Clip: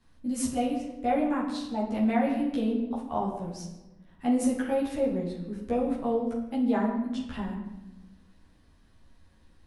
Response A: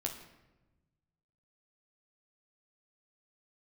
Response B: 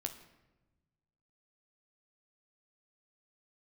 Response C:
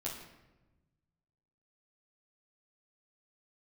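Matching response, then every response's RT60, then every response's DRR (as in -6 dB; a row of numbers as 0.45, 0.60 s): C; 1.1, 1.1, 1.1 s; 1.0, 5.0, -5.5 dB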